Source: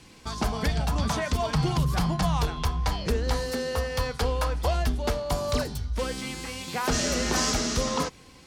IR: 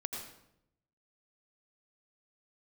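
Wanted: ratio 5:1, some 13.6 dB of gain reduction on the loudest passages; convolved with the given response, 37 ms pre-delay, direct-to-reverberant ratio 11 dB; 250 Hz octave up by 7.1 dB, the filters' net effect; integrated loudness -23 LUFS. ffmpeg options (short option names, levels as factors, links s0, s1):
-filter_complex "[0:a]equalizer=f=250:t=o:g=9,acompressor=threshold=0.02:ratio=5,asplit=2[s0][s1];[1:a]atrim=start_sample=2205,adelay=37[s2];[s1][s2]afir=irnorm=-1:irlink=0,volume=0.251[s3];[s0][s3]amix=inputs=2:normalize=0,volume=4.73"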